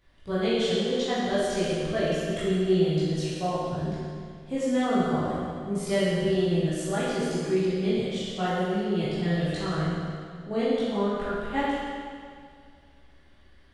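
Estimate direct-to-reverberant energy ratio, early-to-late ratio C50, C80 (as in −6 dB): −11.5 dB, −3.5 dB, −1.0 dB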